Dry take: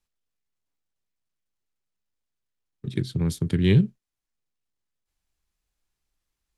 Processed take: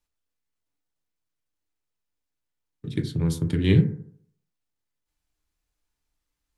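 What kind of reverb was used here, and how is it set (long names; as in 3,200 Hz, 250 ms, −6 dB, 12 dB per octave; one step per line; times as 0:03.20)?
feedback delay network reverb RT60 0.61 s, low-frequency decay 0.95×, high-frequency decay 0.3×, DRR 4.5 dB
level −1 dB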